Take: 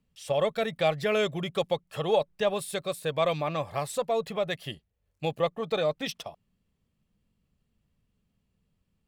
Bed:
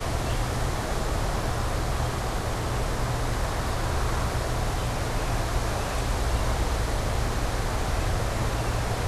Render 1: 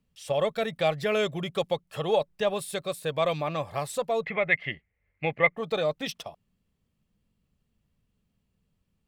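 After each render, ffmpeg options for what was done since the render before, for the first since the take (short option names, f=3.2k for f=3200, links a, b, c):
-filter_complex "[0:a]asettb=1/sr,asplit=3[a][b][c];[a]atrim=end=4.234[d];[b]atrim=start=4.23:end=5.57,asetpts=PTS-STARTPTS,afade=t=in:d=0.004:c=qsin,afade=t=out:st=1.336:d=0.004:c=qsin,lowpass=f=2.1k:t=q:w=14[e];[c]atrim=start=5.566[f];[d][e]acrossfade=d=0.004:c1=hsin:c2=qsin[g];[g][f]acrossfade=d=0.004:c1=qsin:c2=hsin"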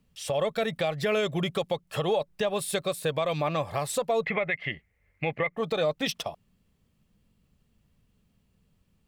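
-filter_complex "[0:a]asplit=2[a][b];[b]acompressor=threshold=-33dB:ratio=6,volume=1dB[c];[a][c]amix=inputs=2:normalize=0,alimiter=limit=-17.5dB:level=0:latency=1:release=107"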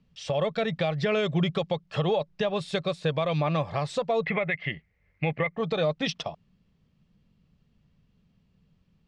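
-af "lowpass=f=5.7k:w=0.5412,lowpass=f=5.7k:w=1.3066,equalizer=f=160:t=o:w=0.63:g=6.5"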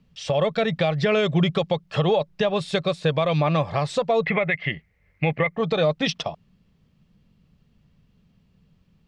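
-af "volume=5dB"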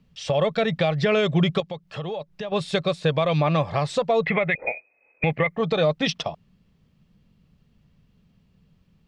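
-filter_complex "[0:a]asettb=1/sr,asplit=3[a][b][c];[a]atrim=end=1.604[d];[b]atrim=start=1.6:end=2.52,asetpts=PTS-STARTPTS,afade=t=in:d=0.004:c=qsin,afade=t=out:st=0.916:d=0.004:c=qsin,acompressor=threshold=-46dB:ratio=1.5:attack=3.2:release=140:knee=1:detection=peak[e];[c]atrim=start=2.516[f];[d][e]acrossfade=d=0.004:c1=hsin:c2=qsin[g];[g][f]acrossfade=d=0.004:c1=qsin:c2=hsin,asettb=1/sr,asplit=3[h][i][j];[h]atrim=end=4.554[k];[i]atrim=start=4.55:end=5.24,asetpts=PTS-STARTPTS,afade=t=in:d=0.004:c=qsin,afade=t=out:st=0.686:d=0.004:c=qsin,lowpass=f=2.2k:t=q:w=0.5098,lowpass=f=2.2k:t=q:w=0.6013,lowpass=f=2.2k:t=q:w=0.9,lowpass=f=2.2k:t=q:w=2.563,afreqshift=-2600[l];[j]atrim=start=5.236[m];[k][l]acrossfade=d=0.004:c1=hsin:c2=qsin[n];[n][m]acrossfade=d=0.004:c1=qsin:c2=hsin"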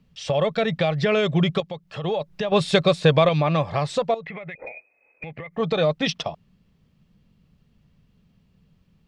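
-filter_complex "[0:a]asettb=1/sr,asplit=3[a][b][c];[a]atrim=end=2.044[d];[b]atrim=start=2.04:end=3.29,asetpts=PTS-STARTPTS,afade=t=in:d=0.004:c=qsin,afade=t=out:st=1.246:d=0.004:c=qsin,acontrast=47[e];[c]atrim=start=3.286[f];[d][e]acrossfade=d=0.004:c1=hsin:c2=qsin[g];[g][f]acrossfade=d=0.004:c1=qsin:c2=hsin,asettb=1/sr,asplit=3[h][i][j];[h]atrim=end=4.144[k];[i]atrim=start=4.14:end=5.58,asetpts=PTS-STARTPTS,afade=t=in:d=0.004:c=qsin,afade=t=out:st=1.436:d=0.004:c=qsin,acompressor=threshold=-32dB:ratio=10:attack=3.2:release=140:knee=1:detection=peak[l];[j]atrim=start=5.576[m];[k][l]acrossfade=d=0.004:c1=hsin:c2=qsin[n];[n][m]acrossfade=d=0.004:c1=qsin:c2=hsin"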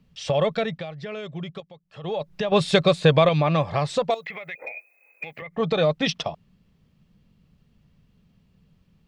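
-filter_complex "[0:a]asettb=1/sr,asplit=3[a][b][c];[a]atrim=end=2.934[d];[b]atrim=start=2.93:end=3.42,asetpts=PTS-STARTPTS,afade=t=in:d=0.004:c=qsin,afade=t=out:st=0.486:d=0.004:c=qsin,bandreject=f=5.5k:w=10[e];[c]atrim=start=3.416[f];[d][e]acrossfade=d=0.004:c1=hsin:c2=qsin[g];[g][f]acrossfade=d=0.004:c1=qsin:c2=hsin,asettb=1/sr,asplit=3[h][i][j];[h]atrim=end=4.104[k];[i]atrim=start=4.1:end=5.42,asetpts=PTS-STARTPTS,afade=t=in:d=0.004:c=qsin,afade=t=out:st=1.316:d=0.004:c=qsin,aemphasis=mode=production:type=riaa[l];[j]atrim=start=5.416[m];[k][l]acrossfade=d=0.004:c1=hsin:c2=qsin[n];[n][m]acrossfade=d=0.004:c1=qsin:c2=hsin,asplit=3[o][p][q];[o]atrim=end=0.85,asetpts=PTS-STARTPTS,afade=t=out:st=0.5:d=0.35:silence=0.211349[r];[p]atrim=start=0.85:end=1.92,asetpts=PTS-STARTPTS,volume=-13.5dB[s];[q]atrim=start=1.92,asetpts=PTS-STARTPTS,afade=t=in:d=0.35:silence=0.211349[t];[r][s][t]concat=n=3:v=0:a=1"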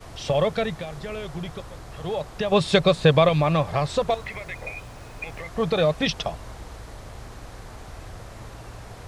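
-filter_complex "[1:a]volume=-13.5dB[a];[0:a][a]amix=inputs=2:normalize=0"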